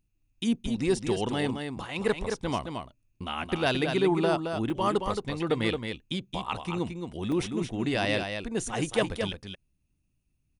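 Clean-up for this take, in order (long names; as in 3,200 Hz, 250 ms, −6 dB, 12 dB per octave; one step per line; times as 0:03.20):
repair the gap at 0:04.70/0:07.32, 2.4 ms
echo removal 221 ms −6 dB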